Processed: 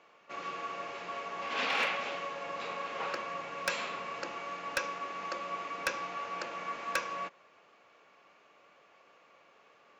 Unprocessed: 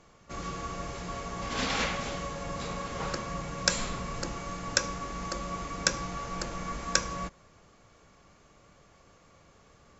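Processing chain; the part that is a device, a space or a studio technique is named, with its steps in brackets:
megaphone (band-pass filter 460–3,300 Hz; parametric band 2,600 Hz +6.5 dB 0.36 octaves; hard clipping −22 dBFS, distortion −13 dB)

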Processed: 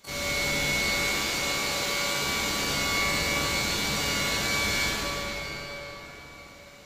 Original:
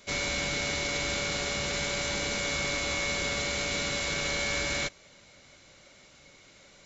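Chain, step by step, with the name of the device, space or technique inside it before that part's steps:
0:00.90–0:02.18: bass and treble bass −9 dB, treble 0 dB
shimmer-style reverb (pitch-shifted copies added +12 semitones −6 dB; convolution reverb RT60 4.9 s, pre-delay 42 ms, DRR −7.5 dB)
level −4.5 dB

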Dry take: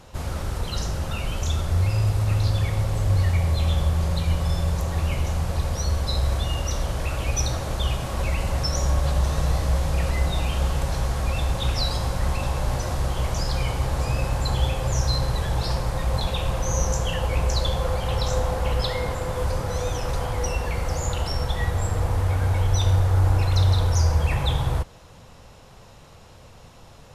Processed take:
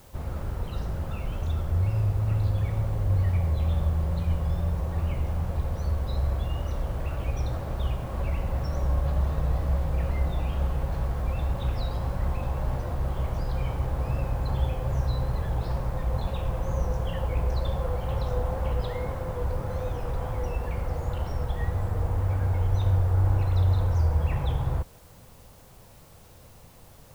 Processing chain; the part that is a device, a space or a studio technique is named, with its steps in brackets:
cassette deck with a dirty head (head-to-tape spacing loss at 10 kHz 35 dB; tape wow and flutter; white noise bed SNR 32 dB)
level −3 dB

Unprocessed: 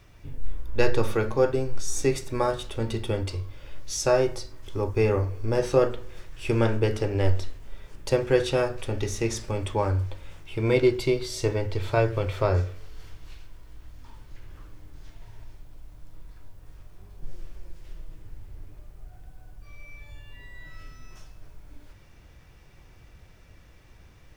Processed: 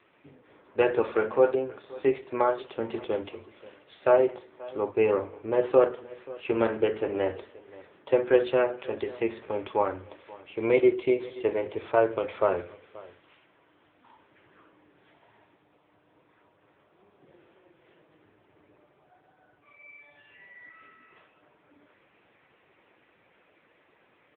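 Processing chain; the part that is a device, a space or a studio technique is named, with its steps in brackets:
0:07.32–0:09.19: dynamic equaliser 8,200 Hz, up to +5 dB, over −53 dBFS, Q 2.9
satellite phone (band-pass filter 330–3,100 Hz; single-tap delay 531 ms −20.5 dB; level +2.5 dB; AMR narrowband 6.7 kbit/s 8,000 Hz)

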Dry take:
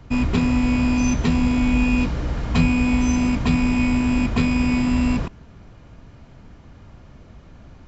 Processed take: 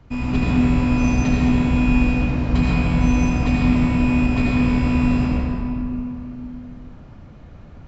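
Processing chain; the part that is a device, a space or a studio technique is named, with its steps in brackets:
swimming-pool hall (convolution reverb RT60 2.9 s, pre-delay 71 ms, DRR −5.5 dB; high-shelf EQ 4,700 Hz −6 dB)
level −5 dB

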